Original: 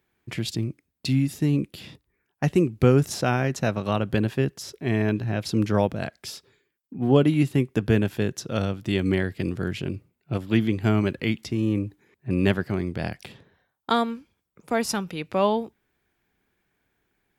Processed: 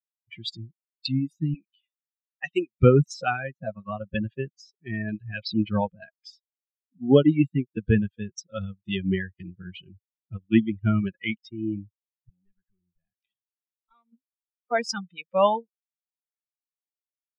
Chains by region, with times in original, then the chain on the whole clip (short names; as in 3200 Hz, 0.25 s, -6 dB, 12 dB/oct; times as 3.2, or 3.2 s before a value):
1.54–2.8 low-pass opened by the level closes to 1200 Hz, open at -16.5 dBFS + HPF 530 Hz 6 dB/oct + high shelf 2200 Hz +7 dB
3.51–4.15 de-esser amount 100% + high shelf 4500 Hz -10 dB
5.14–5.7 LPF 5500 Hz 24 dB/oct + dynamic EQ 2700 Hz, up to +6 dB, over -47 dBFS, Q 0.81
12.29–14.13 compressor 2.5:1, threshold -40 dBFS + hard clip -34.5 dBFS
whole clip: per-bin expansion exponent 3; LPF 5600 Hz 24 dB/oct; gain +6 dB